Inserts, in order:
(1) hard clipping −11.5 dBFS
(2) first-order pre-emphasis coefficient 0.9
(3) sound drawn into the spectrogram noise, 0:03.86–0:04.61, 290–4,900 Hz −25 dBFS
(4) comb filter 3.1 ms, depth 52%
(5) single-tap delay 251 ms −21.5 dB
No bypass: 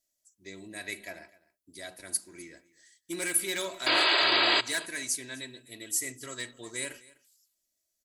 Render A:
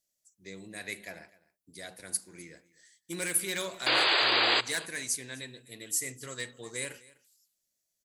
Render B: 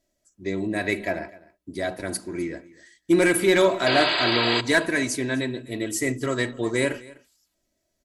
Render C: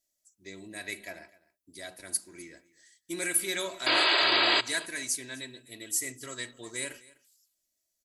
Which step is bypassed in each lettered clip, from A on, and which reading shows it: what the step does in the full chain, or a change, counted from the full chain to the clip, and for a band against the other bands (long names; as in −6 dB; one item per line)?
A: 4, 125 Hz band +5.0 dB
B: 2, 125 Hz band +14.0 dB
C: 1, distortion level −24 dB